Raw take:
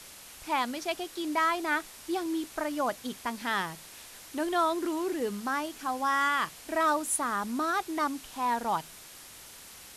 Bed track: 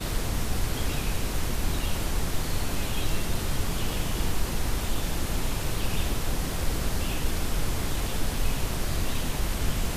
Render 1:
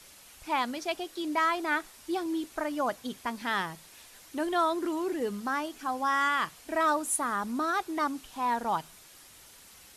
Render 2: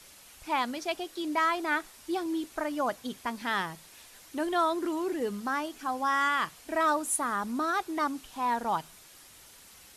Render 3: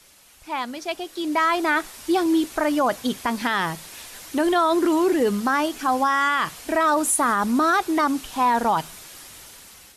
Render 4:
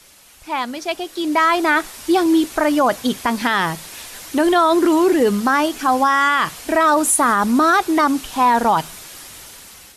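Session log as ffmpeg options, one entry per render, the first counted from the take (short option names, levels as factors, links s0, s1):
-af "afftdn=nr=6:nf=-49"
-af anull
-af "dynaudnorm=f=550:g=5:m=4.22,alimiter=limit=0.251:level=0:latency=1:release=34"
-af "volume=1.78"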